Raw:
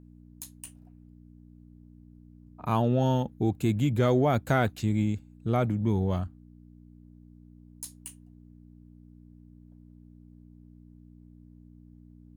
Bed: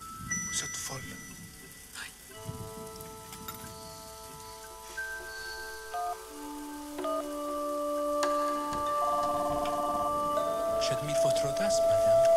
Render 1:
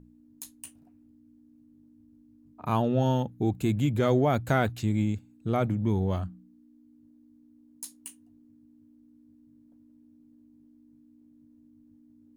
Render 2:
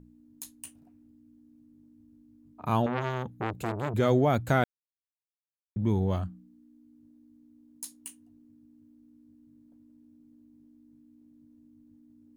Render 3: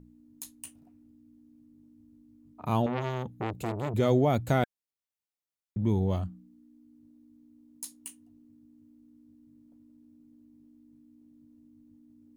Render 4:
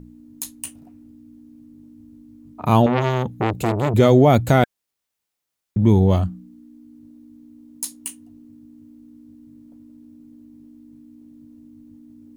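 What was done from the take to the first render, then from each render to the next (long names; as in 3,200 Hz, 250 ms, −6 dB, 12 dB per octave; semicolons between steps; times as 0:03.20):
hum removal 60 Hz, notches 3
0:02.86–0:03.94: saturating transformer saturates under 1,300 Hz; 0:04.64–0:05.76: silence
notch filter 1,600 Hz, Q 17; dynamic equaliser 1,400 Hz, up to −5 dB, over −47 dBFS, Q 1.4
level +12 dB; brickwall limiter −3 dBFS, peak gain reduction 2.5 dB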